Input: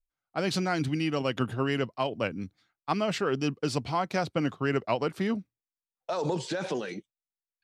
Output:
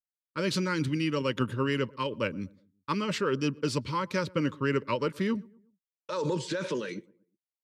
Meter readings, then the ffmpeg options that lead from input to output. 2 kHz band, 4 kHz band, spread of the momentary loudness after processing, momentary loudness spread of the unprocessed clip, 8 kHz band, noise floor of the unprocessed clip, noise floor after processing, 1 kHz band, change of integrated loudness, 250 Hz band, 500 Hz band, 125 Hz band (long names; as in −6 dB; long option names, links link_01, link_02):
0.0 dB, 0.0 dB, 8 LU, 8 LU, 0.0 dB, below −85 dBFS, below −85 dBFS, −2.5 dB, −0.5 dB, 0.0 dB, −1.0 dB, 0.0 dB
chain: -filter_complex "[0:a]agate=range=-33dB:threshold=-45dB:ratio=3:detection=peak,asuperstop=centerf=730:order=12:qfactor=2.8,asplit=2[link_01][link_02];[link_02]adelay=120,lowpass=frequency=1100:poles=1,volume=-23.5dB,asplit=2[link_03][link_04];[link_04]adelay=120,lowpass=frequency=1100:poles=1,volume=0.43,asplit=2[link_05][link_06];[link_06]adelay=120,lowpass=frequency=1100:poles=1,volume=0.43[link_07];[link_03][link_05][link_07]amix=inputs=3:normalize=0[link_08];[link_01][link_08]amix=inputs=2:normalize=0"